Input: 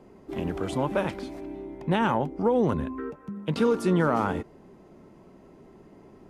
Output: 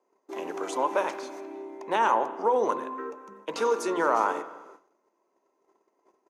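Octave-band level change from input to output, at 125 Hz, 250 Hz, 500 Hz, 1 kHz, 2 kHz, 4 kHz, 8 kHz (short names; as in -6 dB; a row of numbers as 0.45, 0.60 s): under -25 dB, -10.0 dB, -1.0 dB, +4.5 dB, +1.0 dB, -1.5 dB, +5.5 dB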